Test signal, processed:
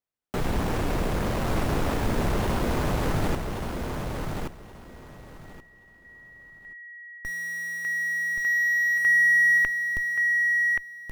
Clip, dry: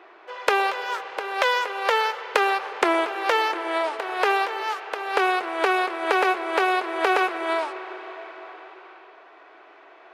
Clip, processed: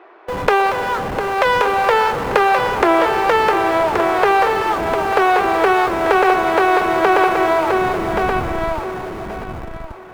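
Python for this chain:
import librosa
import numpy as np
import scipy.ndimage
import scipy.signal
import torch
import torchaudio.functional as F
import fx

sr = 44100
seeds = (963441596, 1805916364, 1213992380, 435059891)

p1 = fx.schmitt(x, sr, flips_db=-35.0)
p2 = x + (p1 * 10.0 ** (-5.0 / 20.0))
p3 = fx.high_shelf(p2, sr, hz=2200.0, db=-12.0)
p4 = fx.echo_feedback(p3, sr, ms=1127, feedback_pct=20, wet_db=-5.0)
y = p4 * 10.0 ** (6.5 / 20.0)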